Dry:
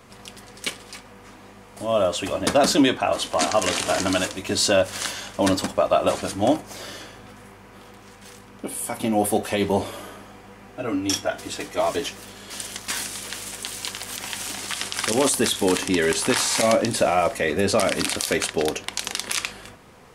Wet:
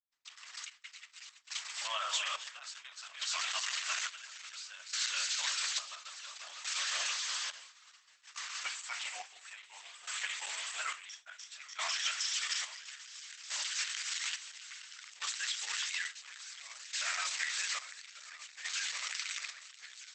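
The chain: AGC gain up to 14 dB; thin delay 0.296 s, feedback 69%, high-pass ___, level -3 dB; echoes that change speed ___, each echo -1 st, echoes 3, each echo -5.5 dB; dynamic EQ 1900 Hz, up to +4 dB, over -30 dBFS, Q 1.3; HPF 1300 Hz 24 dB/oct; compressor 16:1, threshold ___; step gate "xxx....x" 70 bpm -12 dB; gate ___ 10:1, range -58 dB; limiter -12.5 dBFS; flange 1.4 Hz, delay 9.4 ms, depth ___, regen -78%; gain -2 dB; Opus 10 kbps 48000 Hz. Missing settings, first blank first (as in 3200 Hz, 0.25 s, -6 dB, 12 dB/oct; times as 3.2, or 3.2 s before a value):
3800 Hz, 0.138 s, -24 dBFS, -42 dBFS, 2.6 ms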